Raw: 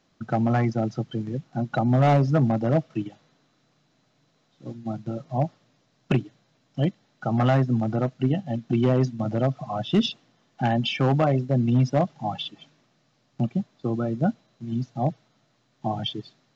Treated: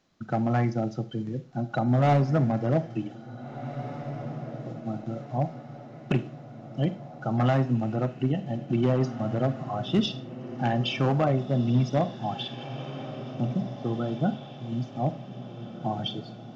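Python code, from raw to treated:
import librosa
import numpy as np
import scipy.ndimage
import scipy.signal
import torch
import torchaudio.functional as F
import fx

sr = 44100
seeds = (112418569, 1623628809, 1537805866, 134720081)

y = fx.echo_diffused(x, sr, ms=1855, feedback_pct=47, wet_db=-12.0)
y = fx.rev_schroeder(y, sr, rt60_s=0.36, comb_ms=33, drr_db=12.5)
y = y * librosa.db_to_amplitude(-3.0)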